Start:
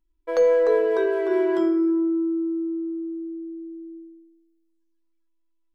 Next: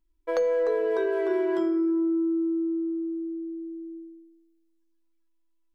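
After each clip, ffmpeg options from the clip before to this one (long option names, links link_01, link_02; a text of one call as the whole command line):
ffmpeg -i in.wav -af "acompressor=threshold=-22dB:ratio=6" out.wav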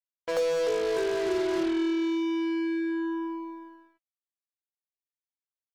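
ffmpeg -i in.wav -filter_complex "[0:a]asplit=2[link_01][link_02];[link_02]asoftclip=type=tanh:threshold=-30dB,volume=-11.5dB[link_03];[link_01][link_03]amix=inputs=2:normalize=0,acrusher=bits=4:mix=0:aa=0.5,volume=-3dB" out.wav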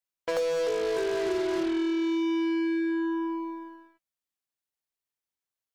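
ffmpeg -i in.wav -af "acompressor=threshold=-30dB:ratio=2.5,volume=3.5dB" out.wav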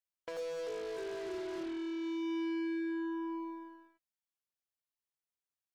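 ffmpeg -i in.wav -af "alimiter=level_in=2.5dB:limit=-24dB:level=0:latency=1:release=47,volume=-2.5dB,volume=-7dB" out.wav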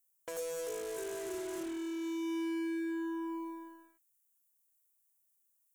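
ffmpeg -i in.wav -af "aexciter=amount=8.6:drive=4:freq=6600" out.wav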